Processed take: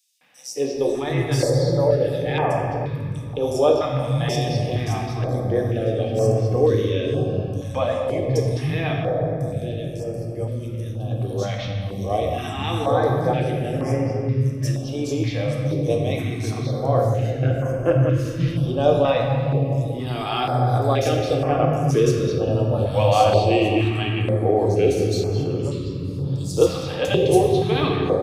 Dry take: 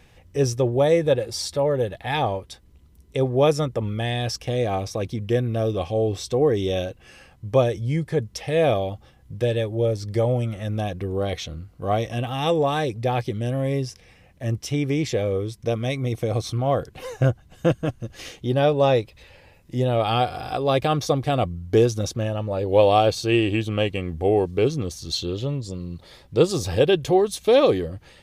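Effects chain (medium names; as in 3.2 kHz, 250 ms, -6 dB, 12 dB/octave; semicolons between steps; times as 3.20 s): 8.72–10.90 s: ten-band graphic EQ 125 Hz -5 dB, 500 Hz -8 dB, 1 kHz -11 dB, 2 kHz -10 dB, 4 kHz -3 dB; three bands offset in time highs, mids, lows 210/740 ms, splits 230/4600 Hz; simulated room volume 140 m³, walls hard, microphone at 0.47 m; step-sequenced notch 2.1 Hz 390–3800 Hz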